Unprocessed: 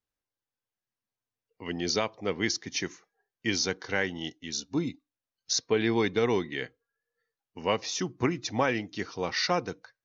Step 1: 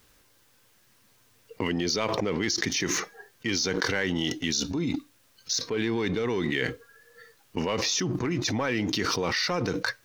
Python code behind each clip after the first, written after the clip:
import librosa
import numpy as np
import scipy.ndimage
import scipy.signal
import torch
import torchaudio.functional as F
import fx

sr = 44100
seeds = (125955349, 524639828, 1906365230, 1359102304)

y = fx.peak_eq(x, sr, hz=740.0, db=-5.0, octaves=0.46)
y = fx.leveller(y, sr, passes=1)
y = fx.env_flatten(y, sr, amount_pct=100)
y = y * 10.0 ** (-8.0 / 20.0)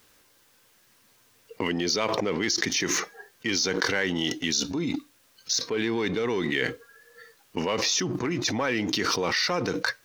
y = fx.low_shelf(x, sr, hz=120.0, db=-11.0)
y = y * 10.0 ** (2.0 / 20.0)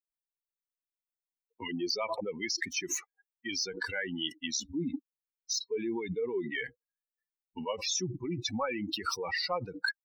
y = fx.bin_expand(x, sr, power=3.0)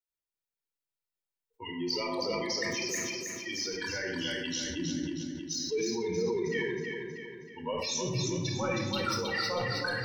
y = fx.echo_feedback(x, sr, ms=318, feedback_pct=47, wet_db=-5)
y = fx.room_shoebox(y, sr, seeds[0], volume_m3=3800.0, walls='furnished', distance_m=4.5)
y = fx.sustainer(y, sr, db_per_s=22.0)
y = y * 10.0 ** (-5.0 / 20.0)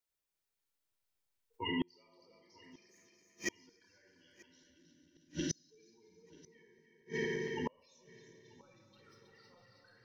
y = fx.reverse_delay_fb(x, sr, ms=115, feedback_pct=81, wet_db=-9.5)
y = fx.gate_flip(y, sr, shuts_db=-26.0, range_db=-37)
y = fx.echo_feedback(y, sr, ms=937, feedback_pct=43, wet_db=-24)
y = y * 10.0 ** (3.0 / 20.0)